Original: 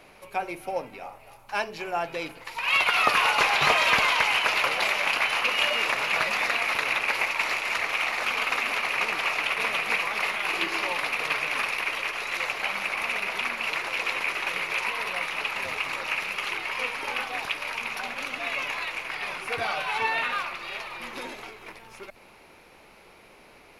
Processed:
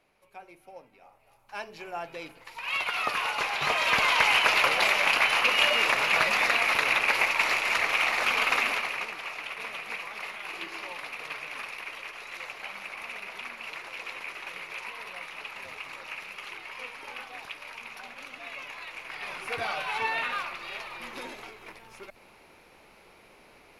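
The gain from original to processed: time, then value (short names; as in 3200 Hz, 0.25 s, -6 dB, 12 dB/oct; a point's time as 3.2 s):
0.95 s -17 dB
1.75 s -7.5 dB
3.56 s -7.5 dB
4.28 s +1.5 dB
8.63 s +1.5 dB
9.15 s -10.5 dB
18.76 s -10.5 dB
19.44 s -3 dB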